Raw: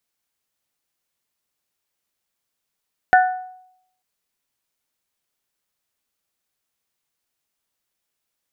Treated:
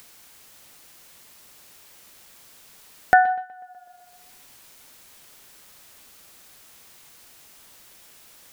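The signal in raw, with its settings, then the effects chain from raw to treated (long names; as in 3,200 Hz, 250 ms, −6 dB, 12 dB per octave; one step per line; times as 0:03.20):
struck glass bell, lowest mode 740 Hz, modes 3, decay 0.74 s, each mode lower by 4.5 dB, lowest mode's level −8 dB
tape delay 125 ms, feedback 44%, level −16.5 dB, low-pass 2,900 Hz
upward compression, threshold −27 dBFS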